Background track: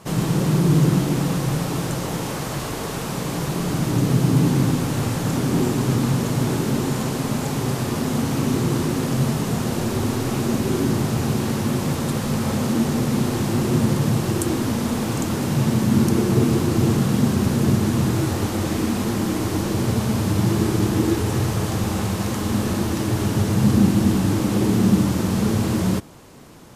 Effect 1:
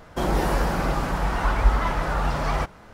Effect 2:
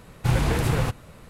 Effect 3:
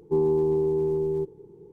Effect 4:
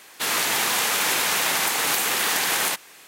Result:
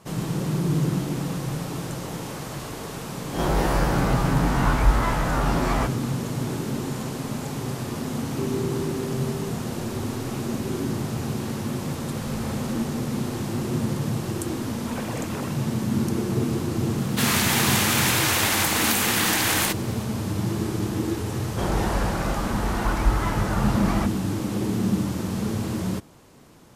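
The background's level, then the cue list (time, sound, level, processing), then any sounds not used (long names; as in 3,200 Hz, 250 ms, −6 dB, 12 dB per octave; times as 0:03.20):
background track −6.5 dB
0:03.22: mix in 1 −1 dB + peak hold with a rise ahead of every peak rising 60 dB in 0.34 s
0:08.27: mix in 3 −8.5 dB
0:11.93: mix in 2 −9 dB + downward compressor, threshold −25 dBFS
0:14.62: mix in 2 −16.5 dB + three sine waves on the formant tracks
0:16.97: mix in 4
0:21.41: mix in 1 −2.5 dB + Butterworth low-pass 12,000 Hz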